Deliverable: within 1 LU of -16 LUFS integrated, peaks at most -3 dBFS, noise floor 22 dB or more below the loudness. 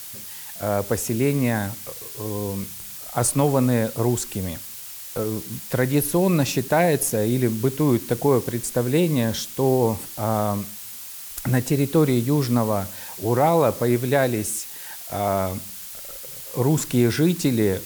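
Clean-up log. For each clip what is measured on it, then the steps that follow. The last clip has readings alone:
noise floor -37 dBFS; noise floor target -45 dBFS; loudness -22.5 LUFS; peak level -6.5 dBFS; loudness target -16.0 LUFS
-> noise reduction 8 dB, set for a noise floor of -37 dBFS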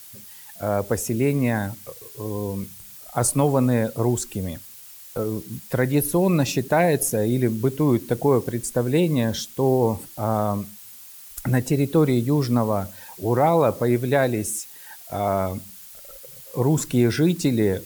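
noise floor -43 dBFS; noise floor target -45 dBFS
-> noise reduction 6 dB, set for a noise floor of -43 dBFS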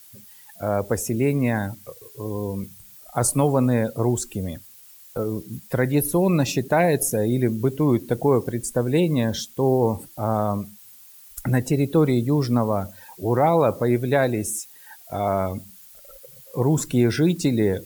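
noise floor -48 dBFS; loudness -22.5 LUFS; peak level -7.0 dBFS; loudness target -16.0 LUFS
-> trim +6.5 dB; peak limiter -3 dBFS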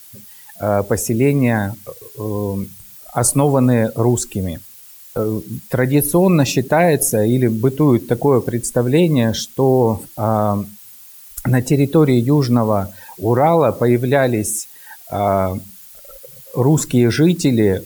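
loudness -16.5 LUFS; peak level -3.0 dBFS; noise floor -41 dBFS

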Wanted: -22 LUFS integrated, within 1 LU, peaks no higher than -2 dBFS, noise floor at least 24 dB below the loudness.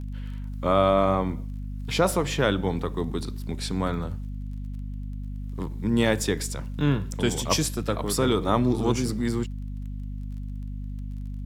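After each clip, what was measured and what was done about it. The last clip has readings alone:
tick rate 23 per s; hum 50 Hz; highest harmonic 250 Hz; hum level -31 dBFS; loudness -27.0 LUFS; peak level -7.0 dBFS; loudness target -22.0 LUFS
-> de-click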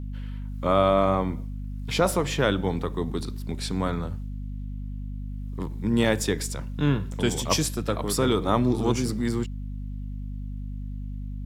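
tick rate 0.26 per s; hum 50 Hz; highest harmonic 250 Hz; hum level -31 dBFS
-> hum notches 50/100/150/200/250 Hz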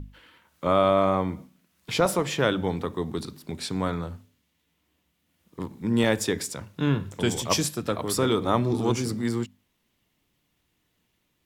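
hum not found; loudness -26.0 LUFS; peak level -7.0 dBFS; loudness target -22.0 LUFS
-> trim +4 dB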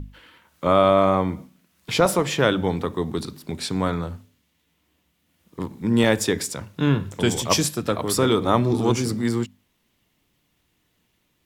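loudness -22.0 LUFS; peak level -3.0 dBFS; noise floor -70 dBFS

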